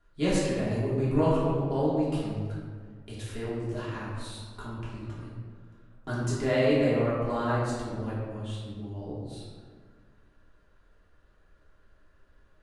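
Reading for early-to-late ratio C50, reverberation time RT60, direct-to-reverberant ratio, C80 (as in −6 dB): −1.0 dB, 1.8 s, −9.0 dB, 1.0 dB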